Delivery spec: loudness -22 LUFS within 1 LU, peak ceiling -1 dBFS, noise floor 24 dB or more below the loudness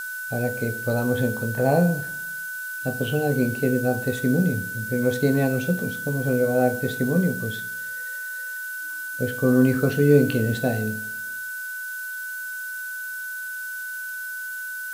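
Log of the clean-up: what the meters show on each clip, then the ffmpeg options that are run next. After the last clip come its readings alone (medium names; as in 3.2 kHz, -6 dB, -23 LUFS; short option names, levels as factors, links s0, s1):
steady tone 1.5 kHz; tone level -30 dBFS; noise floor -32 dBFS; noise floor target -49 dBFS; loudness -24.5 LUFS; peak level -5.0 dBFS; loudness target -22.0 LUFS
-> -af "bandreject=f=1500:w=30"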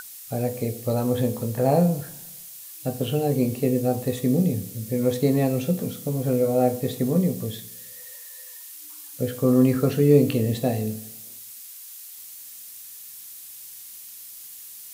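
steady tone not found; noise floor -42 dBFS; noise floor target -48 dBFS
-> -af "afftdn=nr=6:nf=-42"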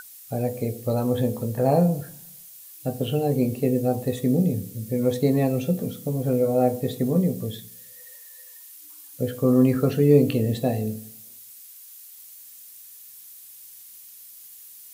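noise floor -46 dBFS; noise floor target -48 dBFS
-> -af "afftdn=nr=6:nf=-46"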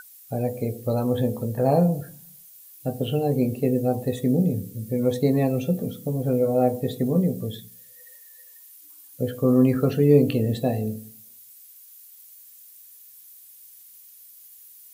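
noise floor -49 dBFS; loudness -23.5 LUFS; peak level -5.5 dBFS; loudness target -22.0 LUFS
-> -af "volume=1.19"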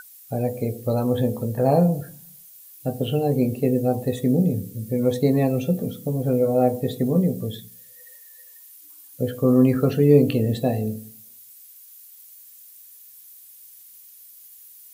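loudness -22.0 LUFS; peak level -4.0 dBFS; noise floor -48 dBFS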